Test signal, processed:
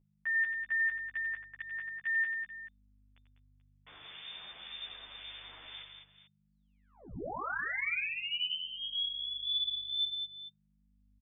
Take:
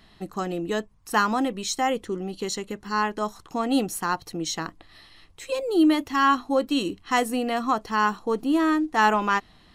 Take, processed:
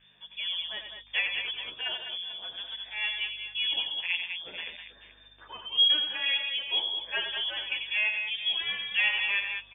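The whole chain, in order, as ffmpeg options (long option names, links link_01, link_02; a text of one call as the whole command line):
ffmpeg -i in.wav -filter_complex "[0:a]equalizer=frequency=420:width=2.7:gain=-8.5,acrossover=split=1900[link_01][link_02];[link_01]aeval=exprs='val(0)*(1-0.7/2+0.7/2*cos(2*PI*1.9*n/s))':channel_layout=same[link_03];[link_02]aeval=exprs='val(0)*(1-0.7/2-0.7/2*cos(2*PI*1.9*n/s))':channel_layout=same[link_04];[link_03][link_04]amix=inputs=2:normalize=0,aecho=1:1:91|199|214|435:0.422|0.422|0.1|0.168,lowpass=frequency=3100:width_type=q:width=0.5098,lowpass=frequency=3100:width_type=q:width=0.6013,lowpass=frequency=3100:width_type=q:width=0.9,lowpass=frequency=3100:width_type=q:width=2.563,afreqshift=-3600,aeval=exprs='val(0)+0.000708*(sin(2*PI*50*n/s)+sin(2*PI*2*50*n/s)/2+sin(2*PI*3*50*n/s)/3+sin(2*PI*4*50*n/s)/4+sin(2*PI*5*50*n/s)/5)':channel_layout=same,asplit=2[link_05][link_06];[link_06]adelay=11,afreqshift=-0.48[link_07];[link_05][link_07]amix=inputs=2:normalize=1" out.wav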